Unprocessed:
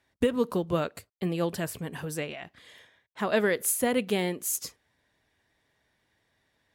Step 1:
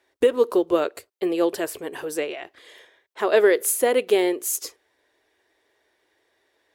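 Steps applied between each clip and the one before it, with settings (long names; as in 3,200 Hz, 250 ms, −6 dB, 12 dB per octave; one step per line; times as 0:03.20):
low shelf with overshoot 260 Hz −12 dB, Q 3
level +4 dB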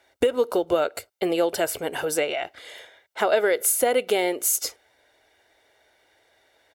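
comb filter 1.4 ms, depth 51%
downward compressor 3 to 1, threshold −25 dBFS, peak gain reduction 10 dB
level +5.5 dB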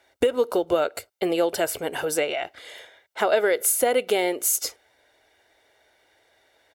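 no processing that can be heard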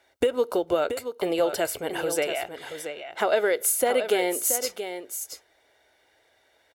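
single-tap delay 678 ms −9 dB
level −2 dB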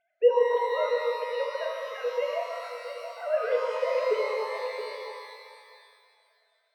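three sine waves on the formant tracks
reverb with rising layers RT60 2.1 s, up +12 semitones, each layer −8 dB, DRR 0 dB
level −6 dB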